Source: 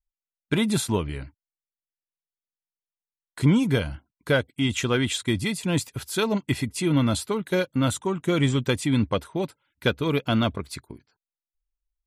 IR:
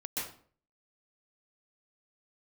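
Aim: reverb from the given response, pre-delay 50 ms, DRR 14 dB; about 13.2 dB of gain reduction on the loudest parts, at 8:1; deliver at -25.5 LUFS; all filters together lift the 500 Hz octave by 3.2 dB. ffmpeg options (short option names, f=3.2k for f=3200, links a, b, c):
-filter_complex "[0:a]equalizer=f=500:t=o:g=4,acompressor=threshold=-28dB:ratio=8,asplit=2[a][b];[1:a]atrim=start_sample=2205,adelay=50[c];[b][c]afir=irnorm=-1:irlink=0,volume=-17dB[d];[a][d]amix=inputs=2:normalize=0,volume=7.5dB"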